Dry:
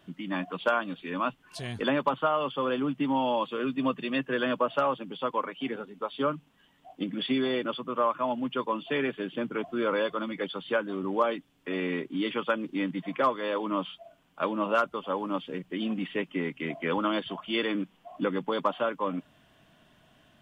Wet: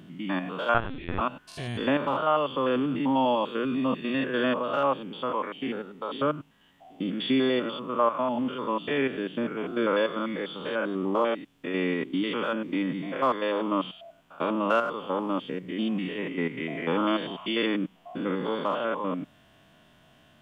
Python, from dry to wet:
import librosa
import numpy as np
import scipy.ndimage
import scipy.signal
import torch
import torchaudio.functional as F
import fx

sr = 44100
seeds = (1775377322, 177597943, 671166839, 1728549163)

y = fx.spec_steps(x, sr, hold_ms=100)
y = fx.lpc_vocoder(y, sr, seeds[0], excitation='pitch_kept', order=10, at=(0.74, 1.21))
y = y * librosa.db_to_amplitude(4.0)